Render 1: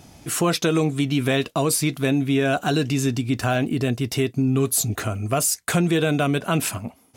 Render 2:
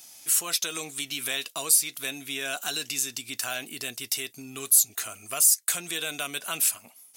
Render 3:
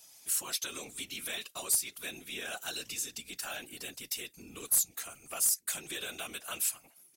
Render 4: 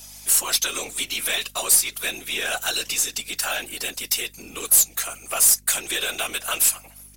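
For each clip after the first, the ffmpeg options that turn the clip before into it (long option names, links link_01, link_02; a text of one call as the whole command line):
ffmpeg -i in.wav -filter_complex "[0:a]aderivative,asplit=2[link_01][link_02];[link_02]acompressor=threshold=-34dB:ratio=6,volume=2dB[link_03];[link_01][link_03]amix=inputs=2:normalize=0" out.wav
ffmpeg -i in.wav -filter_complex "[0:a]afftfilt=real='hypot(re,im)*cos(2*PI*random(0))':imag='hypot(re,im)*sin(2*PI*random(1))':win_size=512:overlap=0.75,acrossover=split=2300[link_01][link_02];[link_02]aeval=exprs='clip(val(0),-1,0.126)':channel_layout=same[link_03];[link_01][link_03]amix=inputs=2:normalize=0,asplit=2[link_04][link_05];[link_05]adelay=1224,volume=-29dB,highshelf=frequency=4000:gain=-27.6[link_06];[link_04][link_06]amix=inputs=2:normalize=0,volume=-2dB" out.wav
ffmpeg -i in.wav -filter_complex "[0:a]aeval=exprs='if(lt(val(0),0),0.708*val(0),val(0))':channel_layout=same,aeval=exprs='val(0)+0.00141*(sin(2*PI*50*n/s)+sin(2*PI*2*50*n/s)/2+sin(2*PI*3*50*n/s)/3+sin(2*PI*4*50*n/s)/4+sin(2*PI*5*50*n/s)/5)':channel_layout=same,acrossover=split=370[link_01][link_02];[link_02]aeval=exprs='0.168*sin(PI/2*2*val(0)/0.168)':channel_layout=same[link_03];[link_01][link_03]amix=inputs=2:normalize=0,volume=5.5dB" out.wav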